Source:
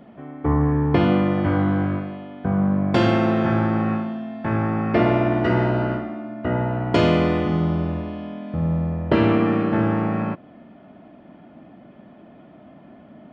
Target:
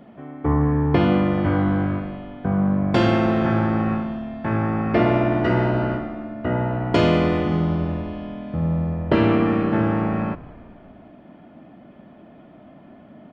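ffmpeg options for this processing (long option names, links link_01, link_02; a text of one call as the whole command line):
ffmpeg -i in.wav -filter_complex "[0:a]asplit=6[link_01][link_02][link_03][link_04][link_05][link_06];[link_02]adelay=190,afreqshift=-72,volume=-20dB[link_07];[link_03]adelay=380,afreqshift=-144,volume=-24.9dB[link_08];[link_04]adelay=570,afreqshift=-216,volume=-29.8dB[link_09];[link_05]adelay=760,afreqshift=-288,volume=-34.6dB[link_10];[link_06]adelay=950,afreqshift=-360,volume=-39.5dB[link_11];[link_01][link_07][link_08][link_09][link_10][link_11]amix=inputs=6:normalize=0" out.wav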